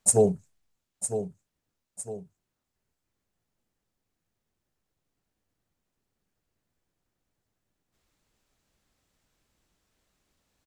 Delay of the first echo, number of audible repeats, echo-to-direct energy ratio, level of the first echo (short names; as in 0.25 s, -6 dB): 0.956 s, 2, -9.5 dB, -10.0 dB